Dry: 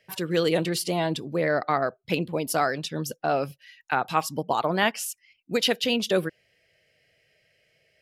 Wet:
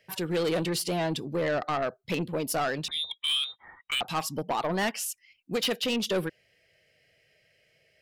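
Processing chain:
0:02.88–0:04.01: voice inversion scrambler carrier 3,800 Hz
soft clipping −22.5 dBFS, distortion −10 dB

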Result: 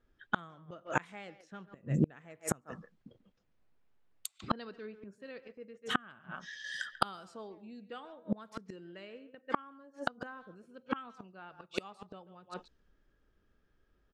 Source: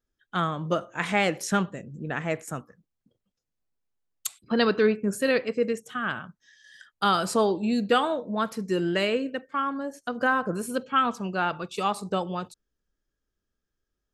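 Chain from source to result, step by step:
far-end echo of a speakerphone 140 ms, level −13 dB
gate with flip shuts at −25 dBFS, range −35 dB
low-pass that shuts in the quiet parts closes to 2,600 Hz, open at −44.5 dBFS
level +11 dB

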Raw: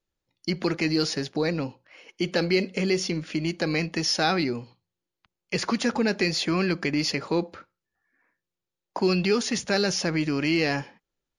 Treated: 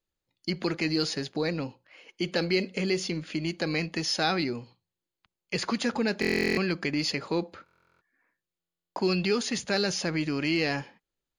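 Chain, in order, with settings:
parametric band 4,400 Hz +2.5 dB 1.7 octaves
notch filter 5,600 Hz, Q 8.5
buffer that repeats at 0:06.20/0:07.64/0:08.59, samples 1,024, times 15
level −3.5 dB

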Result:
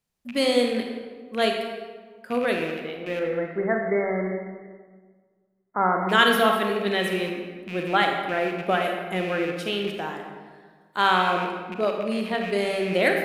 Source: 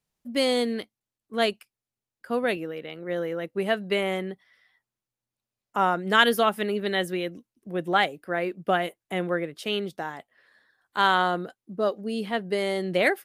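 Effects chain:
loose part that buzzes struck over −39 dBFS, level −27 dBFS
0:03.19–0:06.09: linear-phase brick-wall low-pass 2,200 Hz
convolution reverb RT60 1.6 s, pre-delay 31 ms, DRR 2.5 dB

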